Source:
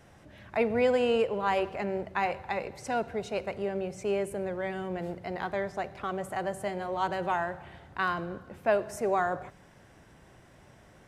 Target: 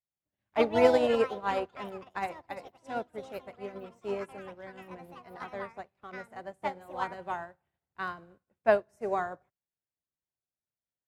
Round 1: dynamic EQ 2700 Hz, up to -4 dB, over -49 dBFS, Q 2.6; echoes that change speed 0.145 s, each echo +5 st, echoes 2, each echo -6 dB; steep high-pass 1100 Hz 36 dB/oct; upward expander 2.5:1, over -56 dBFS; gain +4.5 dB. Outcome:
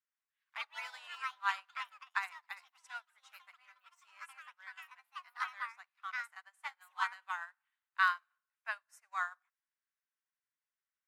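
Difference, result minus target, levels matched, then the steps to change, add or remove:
1000 Hz band +3.0 dB
remove: steep high-pass 1100 Hz 36 dB/oct

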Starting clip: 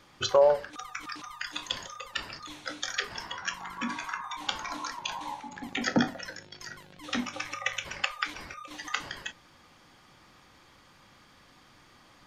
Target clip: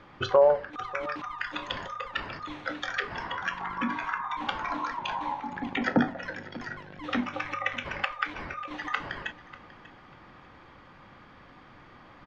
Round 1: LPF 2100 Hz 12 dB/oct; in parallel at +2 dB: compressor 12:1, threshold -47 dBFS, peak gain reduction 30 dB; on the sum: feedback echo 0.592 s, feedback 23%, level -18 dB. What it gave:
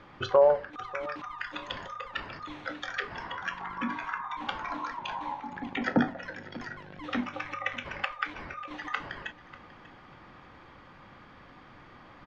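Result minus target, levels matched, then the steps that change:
compressor: peak gain reduction +10 dB
change: compressor 12:1, threshold -36 dBFS, peak gain reduction 20 dB

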